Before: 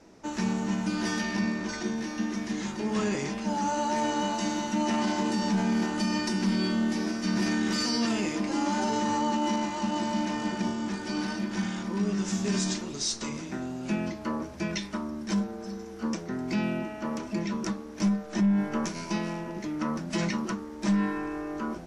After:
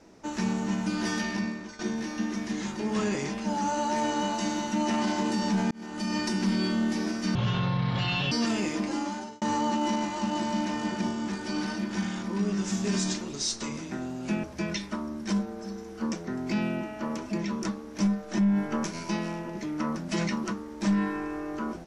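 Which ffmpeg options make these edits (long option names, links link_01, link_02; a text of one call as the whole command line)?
ffmpeg -i in.wav -filter_complex "[0:a]asplit=7[link_01][link_02][link_03][link_04][link_05][link_06][link_07];[link_01]atrim=end=1.79,asetpts=PTS-STARTPTS,afade=type=out:start_time=1.26:duration=0.53:silence=0.199526[link_08];[link_02]atrim=start=1.79:end=5.71,asetpts=PTS-STARTPTS,afade=type=in:duration=0.004:curve=hsin:silence=0.199526,afade=type=out:start_time=3.916:duration=0.004:curve=hsin[link_09];[link_03]atrim=start=5.71:end=7.354,asetpts=PTS-STARTPTS,afade=type=in:duration=0.49[link_10];[link_04]atrim=start=7.35:end=7.92,asetpts=PTS-STARTPTS,asetrate=26019,aresample=44100,atrim=end_sample=42605,asetpts=PTS-STARTPTS[link_11];[link_05]atrim=start=7.916:end=9.02,asetpts=PTS-STARTPTS,afade=type=out:start_time=0.524:duration=0.58[link_12];[link_06]atrim=start=9.02:end=14.042,asetpts=PTS-STARTPTS,afade=type=in:duration=0.004:curve=hsin[link_13];[link_07]atrim=start=14.448[link_14];[link_08][link_09][link_10]concat=n=3:v=0:a=1[link_15];[link_15][link_11]acrossfade=duration=0.004:curve1=hsin:curve2=hsin[link_16];[link_12][link_13]concat=n=2:v=0:a=1[link_17];[link_16][link_17]acrossfade=duration=0.004:curve1=hsin:curve2=hsin[link_18];[link_18][link_14]acrossfade=duration=0.004:curve1=hsin:curve2=hsin" out.wav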